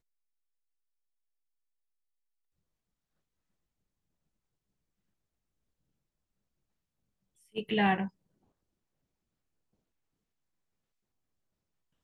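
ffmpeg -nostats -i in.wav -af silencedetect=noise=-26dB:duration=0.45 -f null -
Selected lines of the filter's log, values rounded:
silence_start: 0.00
silence_end: 7.58 | silence_duration: 7.58
silence_start: 8.01
silence_end: 12.03 | silence_duration: 4.02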